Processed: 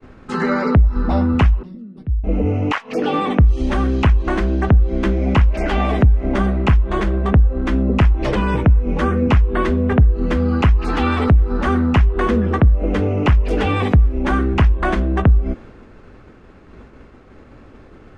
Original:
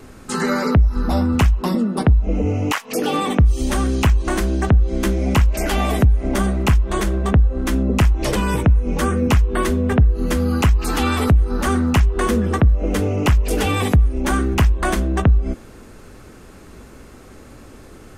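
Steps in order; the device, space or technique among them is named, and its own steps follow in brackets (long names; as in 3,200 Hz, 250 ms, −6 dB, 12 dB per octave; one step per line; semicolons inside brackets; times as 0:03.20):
hearing-loss simulation (low-pass filter 2,800 Hz 12 dB per octave; downward expander −37 dBFS)
0:01.63–0:02.24: guitar amp tone stack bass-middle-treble 10-0-1
level +1.5 dB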